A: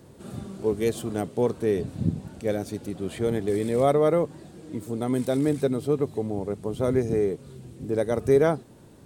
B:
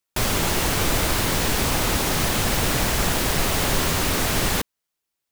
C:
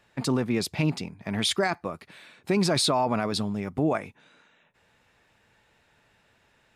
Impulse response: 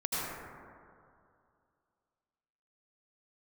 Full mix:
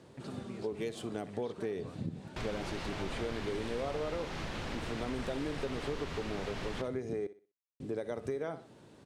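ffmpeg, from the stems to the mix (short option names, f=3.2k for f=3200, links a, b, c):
-filter_complex "[0:a]highpass=f=400:p=1,aemphasis=mode=production:type=50kf,volume=-2.5dB,asplit=3[a][b][c];[a]atrim=end=7.27,asetpts=PTS-STARTPTS,afade=t=out:st=7.266:d=0.004:c=hsin[d];[b]atrim=start=7.27:end=7.8,asetpts=PTS-STARTPTS,volume=0[e];[c]atrim=start=7.8,asetpts=PTS-STARTPTS,afade=t=in:d=0.004:c=hsin[f];[d][e][f]concat=n=3:v=0:a=1,asplit=2[g][h];[h]volume=-20dB[i];[1:a]adelay=2200,volume=-14.5dB,asplit=2[j][k];[k]volume=-11dB[l];[2:a]acompressor=threshold=-25dB:ratio=6,volume=-18dB[m];[g][m]amix=inputs=2:normalize=0,lowshelf=f=130:g=8.5,acompressor=threshold=-28dB:ratio=6,volume=0dB[n];[i][l]amix=inputs=2:normalize=0,aecho=0:1:62|124|186|248:1|0.27|0.0729|0.0197[o];[j][n][o]amix=inputs=3:normalize=0,lowpass=3.8k,acompressor=threshold=-36dB:ratio=2"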